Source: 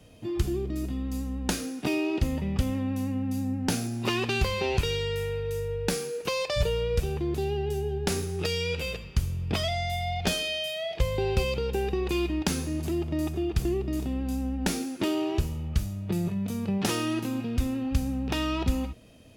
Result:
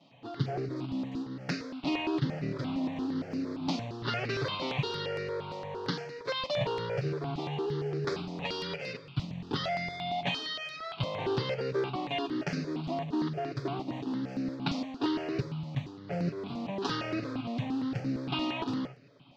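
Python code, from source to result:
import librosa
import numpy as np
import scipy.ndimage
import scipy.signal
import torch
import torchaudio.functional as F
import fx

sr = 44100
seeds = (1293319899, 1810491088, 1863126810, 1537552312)

y = fx.lower_of_two(x, sr, delay_ms=7.1)
y = fx.mod_noise(y, sr, seeds[0], snr_db=16)
y = scipy.signal.sosfilt(scipy.signal.ellip(3, 1.0, 40, [130.0, 4500.0], 'bandpass', fs=sr, output='sos'), y)
y = fx.phaser_held(y, sr, hz=8.7, low_hz=430.0, high_hz=3300.0)
y = y * librosa.db_to_amplitude(1.5)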